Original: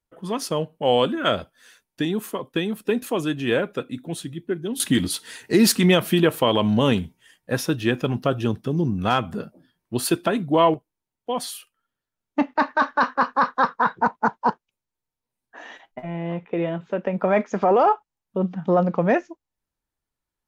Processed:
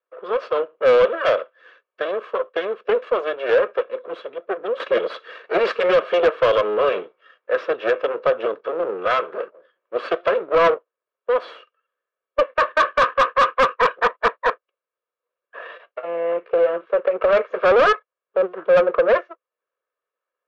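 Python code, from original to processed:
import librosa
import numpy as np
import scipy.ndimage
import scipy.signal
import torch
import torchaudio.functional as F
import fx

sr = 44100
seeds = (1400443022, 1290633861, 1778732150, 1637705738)

y = fx.lower_of_two(x, sr, delay_ms=1.8)
y = fx.cabinet(y, sr, low_hz=370.0, low_slope=24, high_hz=2700.0, hz=(510.0, 820.0, 1300.0, 2100.0), db=(8, -6, 9, -4))
y = 10.0 ** (-15.0 / 20.0) * np.tanh(y / 10.0 ** (-15.0 / 20.0))
y = y * librosa.db_to_amplitude(5.5)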